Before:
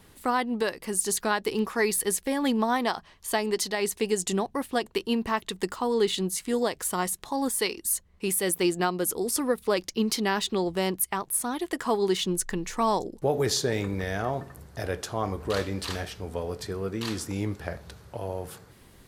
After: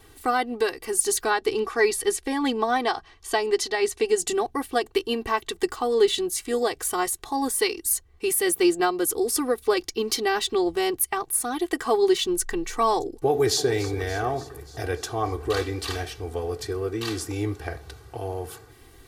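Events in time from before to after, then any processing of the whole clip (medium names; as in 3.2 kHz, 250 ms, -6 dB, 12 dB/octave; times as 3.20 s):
1.30–4.18 s: Bessel low-pass 7.9 kHz
13.28–13.73 s: echo throw 290 ms, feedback 65%, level -15 dB
whole clip: comb 2.6 ms, depth 95%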